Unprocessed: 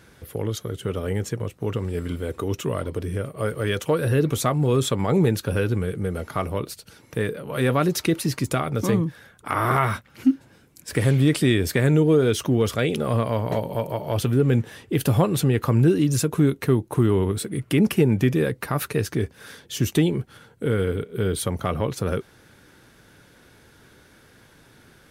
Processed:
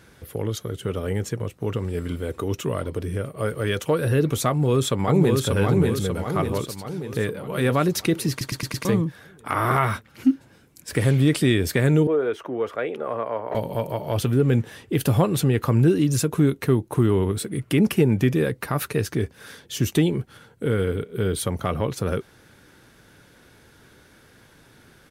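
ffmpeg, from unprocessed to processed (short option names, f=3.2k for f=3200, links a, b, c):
-filter_complex "[0:a]asplit=2[a][b];[b]afade=t=in:st=4.48:d=0.01,afade=t=out:st=5.43:d=0.01,aecho=0:1:590|1180|1770|2360|2950|3540|4130|4720:0.749894|0.412442|0.226843|0.124764|0.06862|0.037741|0.0207576|0.0114167[c];[a][c]amix=inputs=2:normalize=0,asettb=1/sr,asplit=3[d][e][f];[d]atrim=end=12.074[g];[e]atrim=start=12.07:end=13.55,asetpts=PTS-STARTPTS,afade=t=in:d=0.004:c=qsin,afade=t=out:st=1.476:d=0.004:c=qsin,acrossover=split=350 2100:gain=0.0794 1 0.0794[h][i][j];[h][i][j]amix=inputs=3:normalize=0[k];[f]atrim=start=13.546[l];[g][k]acrossfade=d=0.004:c1=hsin:c2=qsin[m];[m][l]acrossfade=d=0.004:c1=qsin:c2=hsin,asplit=6[n][o][p][q][r][s];[n]atrim=end=8.412[t];[o]atrim=start=8.298:end=8.412[u];[p]atrim=start=8.298:end=8.412[v];[q]atrim=start=8.298:end=8.412[w];[r]atrim=start=8.298:end=8.412[x];[s]atrim=start=8.848[y];[t][u]acrossfade=d=0.004:c1=hsin:c2=hsin[z];[z][v]acrossfade=d=0.004:c1=hsin:c2=hsin[aa];[aa][w]acrossfade=d=0.004:c1=hsin:c2=hsin[ab];[ab][x]acrossfade=d=0.004:c1=hsin:c2=hsin[ac];[ac][y]acrossfade=d=0.004:c1=hsin:c2=hsin"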